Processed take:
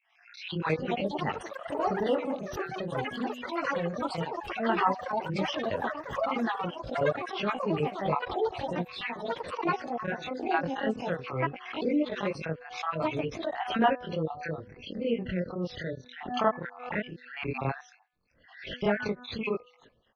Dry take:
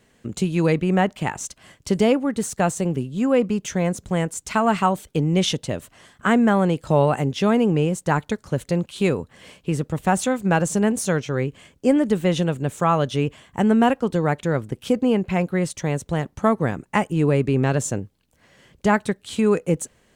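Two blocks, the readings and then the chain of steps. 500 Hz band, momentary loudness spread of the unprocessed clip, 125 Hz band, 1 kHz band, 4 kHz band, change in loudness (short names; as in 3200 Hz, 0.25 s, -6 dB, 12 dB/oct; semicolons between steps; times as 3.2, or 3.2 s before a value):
-9.0 dB, 8 LU, -14.5 dB, -6.0 dB, -6.5 dB, -10.0 dB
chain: random spectral dropouts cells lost 62%; low shelf 340 Hz +11 dB; reverse echo 31 ms -15.5 dB; chorus 0.15 Hz, delay 18 ms, depth 6.3 ms; rotary speaker horn 1.2 Hz, later 5 Hz, at 12.28; steep low-pass 6000 Hz 96 dB/oct; de-hum 247 Hz, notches 7; echoes that change speed 0.449 s, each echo +7 st, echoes 3, each echo -6 dB; three-band isolator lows -16 dB, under 520 Hz, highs -17 dB, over 3900 Hz; backwards sustainer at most 85 dB/s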